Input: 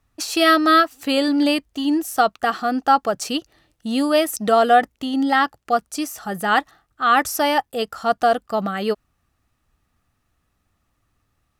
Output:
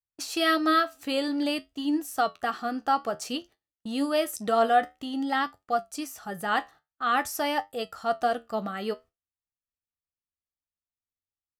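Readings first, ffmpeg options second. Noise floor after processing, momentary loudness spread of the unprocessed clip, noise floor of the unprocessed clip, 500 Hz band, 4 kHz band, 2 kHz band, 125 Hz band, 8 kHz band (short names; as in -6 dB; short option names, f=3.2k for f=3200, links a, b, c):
under -85 dBFS, 10 LU, -71 dBFS, -8.0 dB, -8.0 dB, -8.5 dB, n/a, -8.5 dB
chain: -af "agate=range=-29dB:threshold=-40dB:ratio=16:detection=peak,flanger=delay=9.9:depth=4:regen=66:speed=0.52:shape=triangular,volume=-4dB"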